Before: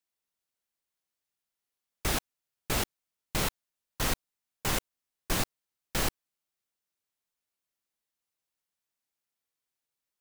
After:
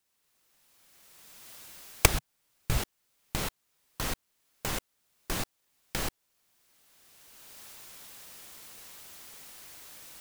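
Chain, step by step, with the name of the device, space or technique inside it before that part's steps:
0:02.13–0:02.78: low shelf with overshoot 180 Hz +9 dB, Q 1.5
cheap recorder with automatic gain (white noise bed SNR 39 dB; camcorder AGC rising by 20 dB per second)
level −4 dB

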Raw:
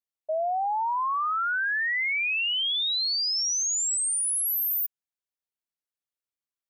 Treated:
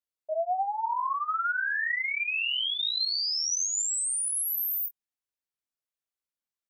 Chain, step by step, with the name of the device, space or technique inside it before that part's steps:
double-tracked vocal (double-tracking delay 21 ms −8 dB; chorus effect 1.3 Hz, delay 18 ms, depth 7.8 ms)

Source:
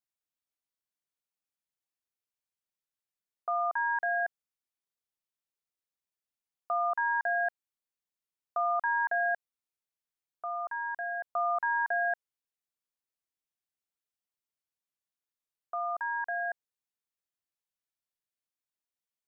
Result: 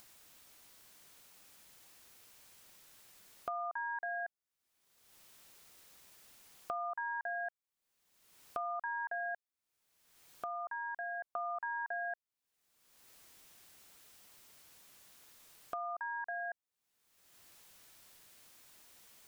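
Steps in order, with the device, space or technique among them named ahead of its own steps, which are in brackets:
upward and downward compression (upward compression, threshold −47 dBFS; downward compressor 3 to 1, threshold −49 dBFS, peak gain reduction 16.5 dB)
level +6.5 dB

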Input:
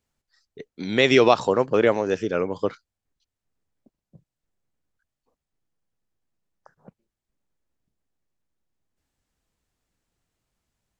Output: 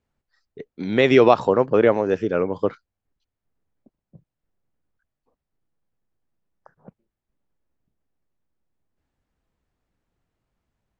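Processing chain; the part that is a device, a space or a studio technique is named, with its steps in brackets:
through cloth (high-shelf EQ 3,800 Hz −17 dB)
level +3 dB

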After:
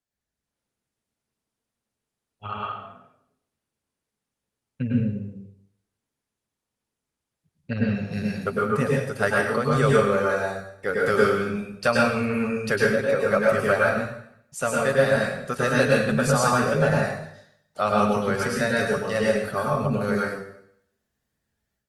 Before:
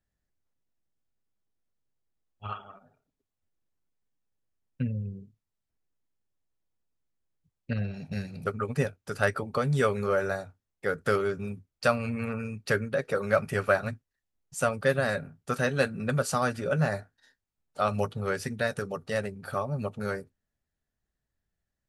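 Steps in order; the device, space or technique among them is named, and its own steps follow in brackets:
far-field microphone of a smart speaker (convolution reverb RT60 0.75 s, pre-delay 98 ms, DRR −3.5 dB; high-pass filter 120 Hz 6 dB per octave; automatic gain control gain up to 9 dB; level −5 dB; Opus 32 kbit/s 48,000 Hz)

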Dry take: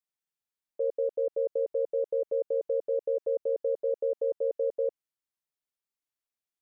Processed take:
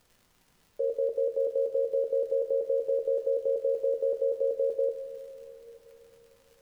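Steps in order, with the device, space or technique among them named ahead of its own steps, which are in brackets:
vinyl LP (surface crackle 130 per second −50 dBFS; pink noise bed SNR 37 dB)
coupled-rooms reverb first 0.34 s, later 4.7 s, from −18 dB, DRR 4 dB

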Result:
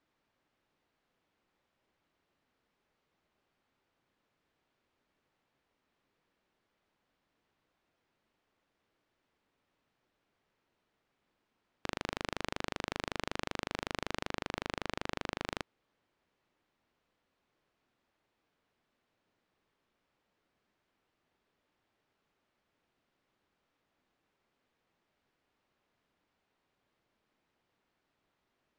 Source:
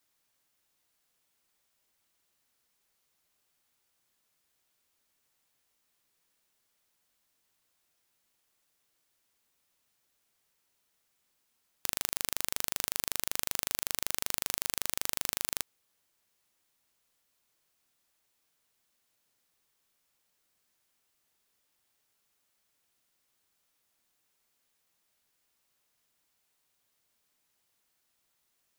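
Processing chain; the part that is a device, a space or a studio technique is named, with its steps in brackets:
phone in a pocket (low-pass filter 3,500 Hz 12 dB per octave; parametric band 290 Hz +3.5 dB 1.6 octaves; high-shelf EQ 2,100 Hz −8.5 dB)
0:14.28–0:15.47: high-shelf EQ 6,000 Hz −4.5 dB
level +5 dB

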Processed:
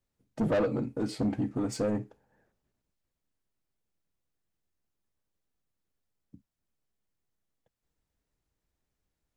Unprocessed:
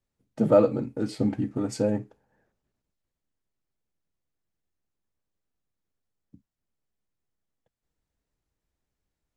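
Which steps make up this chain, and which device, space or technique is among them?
saturation between pre-emphasis and de-emphasis (high-shelf EQ 2,200 Hz +9.5 dB; soft clipping −22.5 dBFS, distortion −6 dB; high-shelf EQ 2,200 Hz −9.5 dB)

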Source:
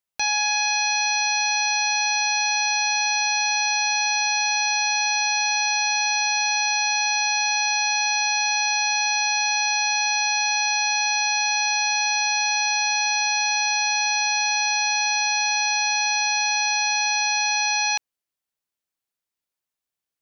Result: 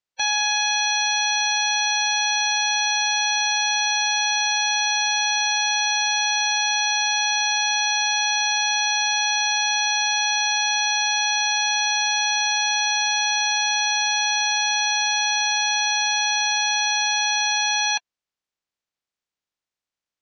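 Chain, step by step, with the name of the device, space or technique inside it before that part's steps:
clip after many re-uploads (low-pass filter 5,300 Hz; spectral magnitudes quantised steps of 30 dB)
level +2 dB

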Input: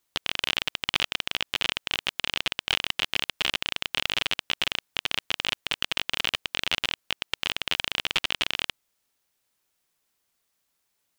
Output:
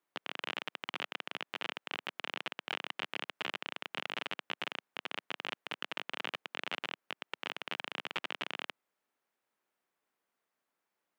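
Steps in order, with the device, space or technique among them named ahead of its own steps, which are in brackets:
DJ mixer with the lows and highs turned down (three-way crossover with the lows and the highs turned down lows −21 dB, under 180 Hz, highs −15 dB, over 2,200 Hz; brickwall limiter −19 dBFS, peak gain reduction 9 dB)
level −1.5 dB

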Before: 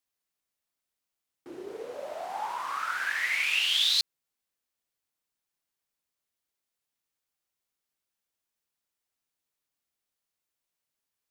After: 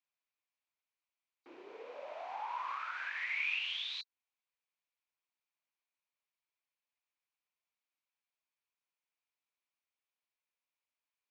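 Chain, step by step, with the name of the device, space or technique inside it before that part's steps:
hearing aid with frequency lowering (hearing-aid frequency compression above 3,700 Hz 1.5 to 1; downward compressor 3 to 1, threshold −33 dBFS, peak gain reduction 8.5 dB; loudspeaker in its box 330–5,500 Hz, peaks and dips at 380 Hz −5 dB, 1,000 Hz +6 dB, 2,400 Hz +9 dB, 5,100 Hz −4 dB)
level −7.5 dB

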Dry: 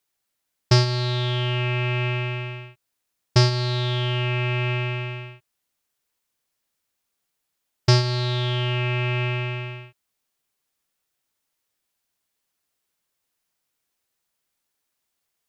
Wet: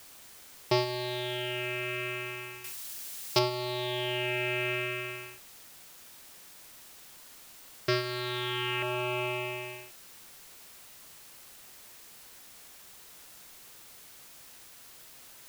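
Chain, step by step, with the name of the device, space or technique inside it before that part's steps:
shortwave radio (band-pass filter 340–2,800 Hz; amplitude tremolo 0.22 Hz, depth 35%; auto-filter notch saw down 0.34 Hz 560–2,100 Hz; white noise bed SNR 15 dB)
0:02.64–0:03.39: high-shelf EQ 2,500 Hz +11.5 dB

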